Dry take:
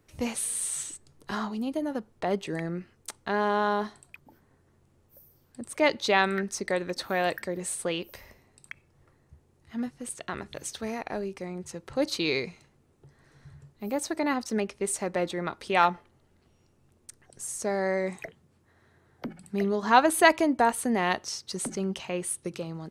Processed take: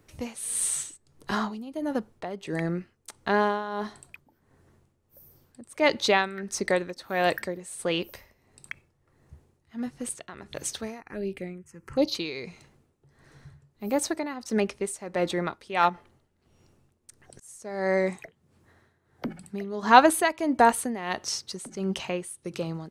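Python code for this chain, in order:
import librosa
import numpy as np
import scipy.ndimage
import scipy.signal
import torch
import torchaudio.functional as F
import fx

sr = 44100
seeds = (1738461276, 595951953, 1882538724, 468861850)

y = x * (1.0 - 0.79 / 2.0 + 0.79 / 2.0 * np.cos(2.0 * np.pi * 1.5 * (np.arange(len(x)) / sr)))
y = fx.env_phaser(y, sr, low_hz=540.0, high_hz=1600.0, full_db=-29.0, at=(11.0, 12.15))
y = fx.auto_swell(y, sr, attack_ms=369.0, at=(15.88, 17.64), fade=0.02)
y = y * 10.0 ** (4.5 / 20.0)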